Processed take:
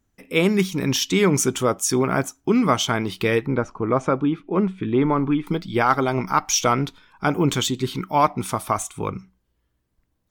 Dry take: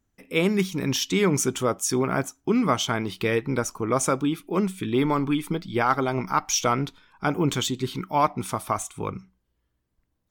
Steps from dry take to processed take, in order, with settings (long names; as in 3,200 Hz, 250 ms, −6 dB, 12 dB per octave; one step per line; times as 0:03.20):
0:03.46–0:05.47: Bessel low-pass filter 1,700 Hz, order 2
level +3.5 dB